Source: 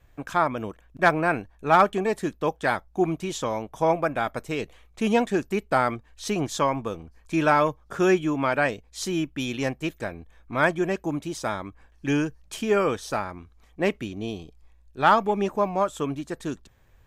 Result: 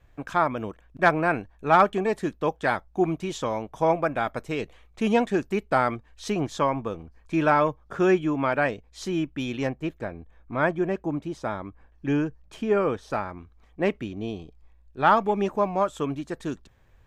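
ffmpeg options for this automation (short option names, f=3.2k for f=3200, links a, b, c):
-af "asetnsamples=n=441:p=0,asendcmd='6.32 lowpass f 2600;9.67 lowpass f 1300;13.1 lowpass f 2500;15.17 lowpass f 5000',lowpass=f=4.6k:p=1"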